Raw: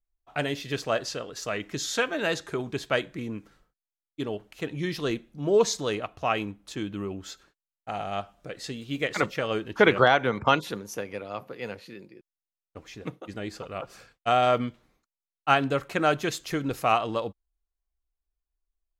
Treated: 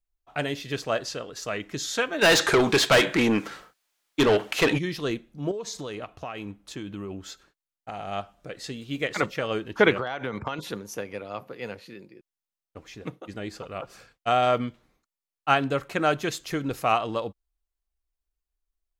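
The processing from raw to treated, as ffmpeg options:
-filter_complex "[0:a]asplit=3[a][b][c];[a]afade=t=out:st=2.21:d=0.02[d];[b]asplit=2[e][f];[f]highpass=f=720:p=1,volume=30dB,asoftclip=type=tanh:threshold=-10dB[g];[e][g]amix=inputs=2:normalize=0,lowpass=f=6k:p=1,volume=-6dB,afade=t=in:st=2.21:d=0.02,afade=t=out:st=4.77:d=0.02[h];[c]afade=t=in:st=4.77:d=0.02[i];[d][h][i]amix=inputs=3:normalize=0,asettb=1/sr,asplit=3[j][k][l];[j]atrim=end=5.514[m];[k]atrim=start=5.51:end=8.08,asetpts=PTS-STARTPTS,afade=t=in:d=0.004:c=qsin,afade=t=out:st=2.566:d=0.004:c=qsin,acompressor=threshold=-30dB:ratio=16:attack=3.2:release=140:knee=1:detection=peak[n];[l]atrim=start=8.076[o];[m][n]acrossfade=d=0.004:c1=hsin:c2=qsin[p];[p][o]acrossfade=d=0.004:c1=qsin:c2=hsin,asettb=1/sr,asplit=3[q][r][s];[q]atrim=end=9.944[t];[r]atrim=start=9.94:end=10.59,asetpts=PTS-STARTPTS,afade=t=in:d=0.004:c=qsin,afade=t=out:st=0.646:d=0.004:c=qsin,acompressor=threshold=-25dB:ratio=16:attack=3.2:release=140:knee=1:detection=peak[u];[s]atrim=start=10.586[v];[t][u]acrossfade=d=0.004:c1=hsin:c2=qsin[w];[w][v]acrossfade=d=0.004:c1=qsin:c2=hsin"

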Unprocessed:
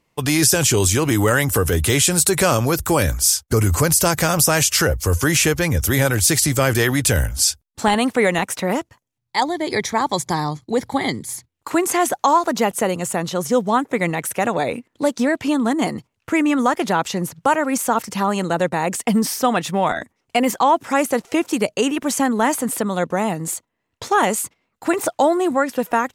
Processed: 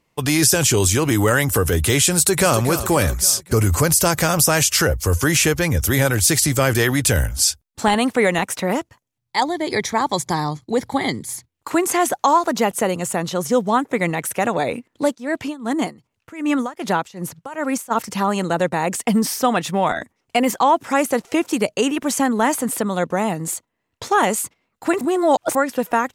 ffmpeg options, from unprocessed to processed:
-filter_complex "[0:a]asplit=2[a][b];[b]afade=t=in:st=2.11:d=0.01,afade=t=out:st=2.59:d=0.01,aecho=0:1:270|540|810|1080|1350|1620:0.266073|0.14634|0.0804869|0.0442678|0.0243473|0.013391[c];[a][c]amix=inputs=2:normalize=0,asplit=3[d][e][f];[d]afade=t=out:st=15.14:d=0.02[g];[e]tremolo=f=2.6:d=0.89,afade=t=in:st=15.14:d=0.02,afade=t=out:st=17.9:d=0.02[h];[f]afade=t=in:st=17.9:d=0.02[i];[g][h][i]amix=inputs=3:normalize=0,asplit=3[j][k][l];[j]atrim=end=25.012[m];[k]atrim=start=25.008:end=25.552,asetpts=PTS-STARTPTS,areverse[n];[l]atrim=start=25.548[o];[m][n]acrossfade=d=0.004:c1=hsin:c2=hsin[p];[p][o]acrossfade=d=0.004:c1=hsin:c2=hsin"

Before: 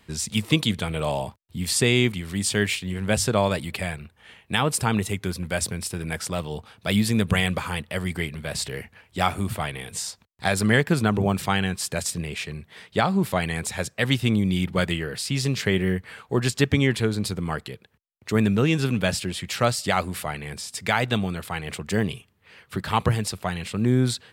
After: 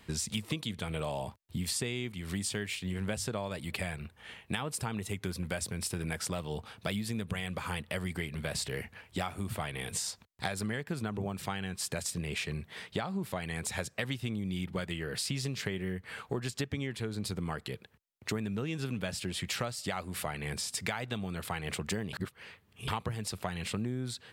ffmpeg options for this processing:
-filter_complex "[0:a]asplit=3[a][b][c];[a]atrim=end=22.132[d];[b]atrim=start=22.128:end=22.882,asetpts=PTS-STARTPTS,areverse[e];[c]atrim=start=22.878[f];[d][e]acrossfade=d=0.004:c1=hsin:c2=hsin[g];[g][f]acrossfade=d=0.004:c1=hsin:c2=hsin,acompressor=threshold=-31dB:ratio=12"

